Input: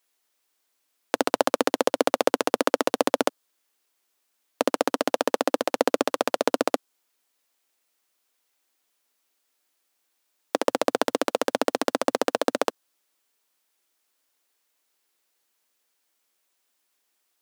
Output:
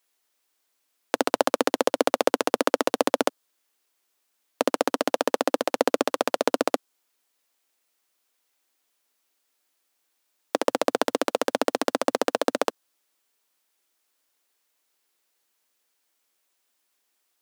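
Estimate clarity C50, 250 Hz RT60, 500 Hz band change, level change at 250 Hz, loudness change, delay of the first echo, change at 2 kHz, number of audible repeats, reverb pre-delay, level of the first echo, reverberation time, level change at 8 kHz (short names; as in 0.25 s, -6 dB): none, none, 0.0 dB, 0.0 dB, 0.0 dB, none, 0.0 dB, none, none, none, none, 0.0 dB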